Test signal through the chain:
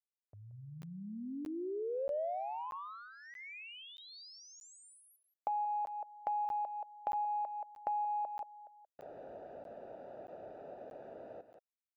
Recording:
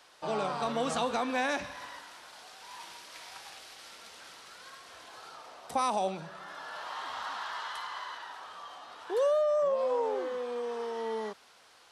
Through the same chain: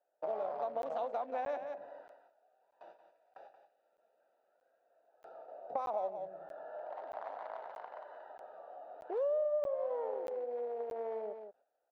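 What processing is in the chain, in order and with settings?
local Wiener filter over 41 samples; tilt EQ +2 dB/octave; gate with hold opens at -51 dBFS; band-pass filter 630 Hz, Q 3.8; distance through air 77 m; delay 178 ms -11.5 dB; compression 3:1, threshold -51 dBFS; crackling interface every 0.63 s, samples 512, zero, from 0.82 s; tape noise reduction on one side only encoder only; trim +13.5 dB

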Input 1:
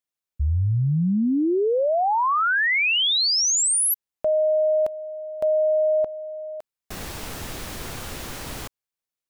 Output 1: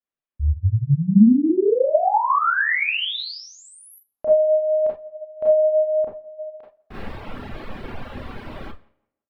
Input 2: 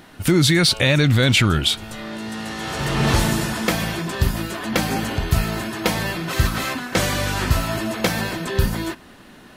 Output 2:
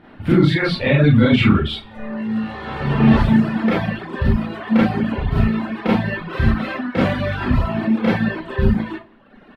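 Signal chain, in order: distance through air 450 m; doubling 44 ms -14 dB; tape echo 166 ms, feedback 27%, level -16 dB, low-pass 2.7 kHz; Schroeder reverb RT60 0.4 s, combs from 28 ms, DRR -7 dB; dynamic bell 210 Hz, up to +4 dB, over -22 dBFS, Q 1.5; reverb removal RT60 1 s; trim -3 dB

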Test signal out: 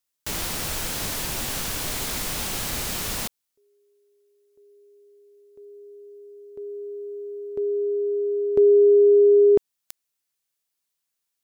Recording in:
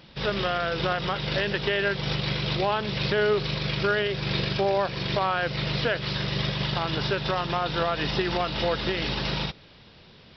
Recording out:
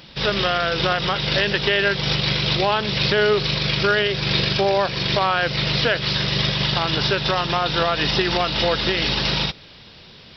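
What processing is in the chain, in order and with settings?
treble shelf 2.8 kHz +8 dB; trim +4.5 dB

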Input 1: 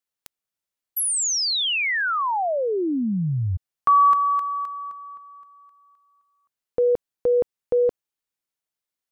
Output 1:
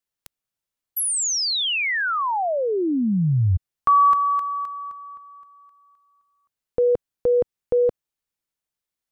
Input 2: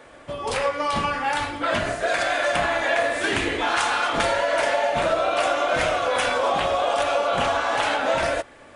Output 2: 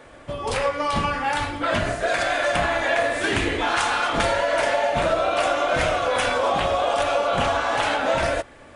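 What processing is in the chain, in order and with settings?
bass shelf 160 Hz +7.5 dB

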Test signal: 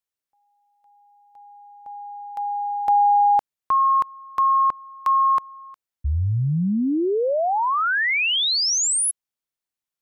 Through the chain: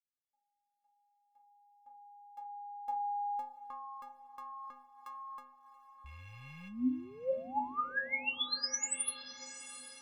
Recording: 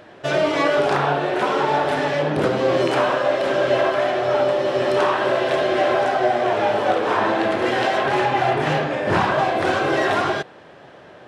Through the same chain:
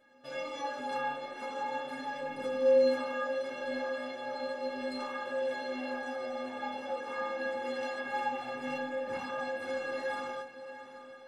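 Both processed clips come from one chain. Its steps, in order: rattle on loud lows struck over -27 dBFS, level -25 dBFS; inharmonic resonator 250 Hz, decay 0.53 s, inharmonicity 0.03; echo that smears into a reverb 738 ms, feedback 50%, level -13 dB

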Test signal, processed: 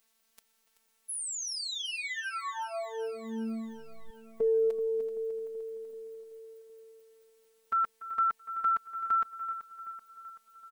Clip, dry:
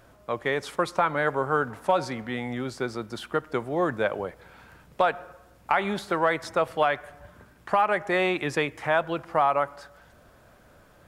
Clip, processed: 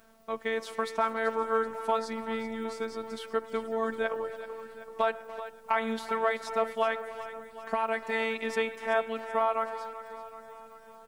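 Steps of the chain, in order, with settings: added noise white -68 dBFS; speakerphone echo 290 ms, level -15 dB; robot voice 224 Hz; on a send: feedback delay 382 ms, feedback 59%, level -13 dB; on the sum: trim -2.5 dB

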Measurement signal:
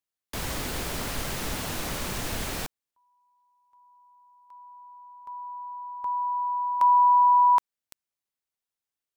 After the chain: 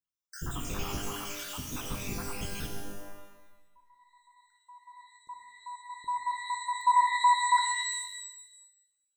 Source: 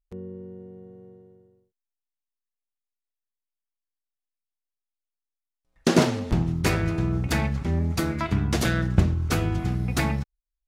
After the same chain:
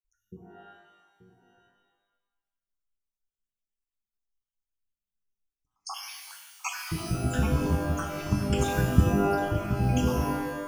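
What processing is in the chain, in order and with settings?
random holes in the spectrogram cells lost 73%; static phaser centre 2.9 kHz, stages 8; pitch-shifted reverb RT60 1 s, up +12 st, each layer -2 dB, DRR 3 dB

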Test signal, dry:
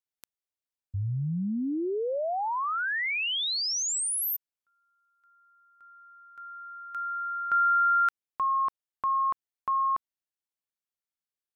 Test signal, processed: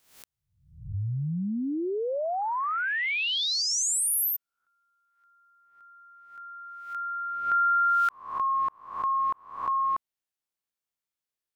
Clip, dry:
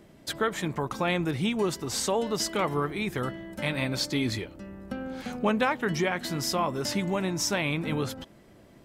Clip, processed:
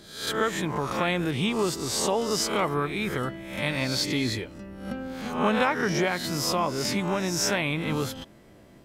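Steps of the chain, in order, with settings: reverse spectral sustain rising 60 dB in 0.59 s

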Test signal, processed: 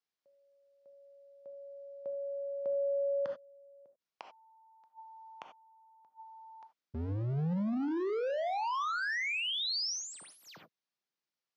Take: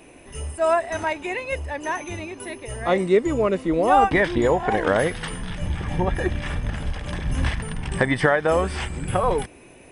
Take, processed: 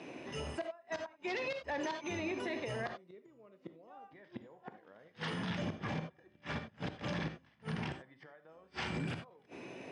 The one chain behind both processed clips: inverted gate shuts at -16 dBFS, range -39 dB; wavefolder -22 dBFS; high-pass 120 Hz 24 dB/octave; gated-style reverb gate 110 ms flat, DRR 9.5 dB; peak limiter -28.5 dBFS; Chebyshev low-pass 5.4 kHz, order 3

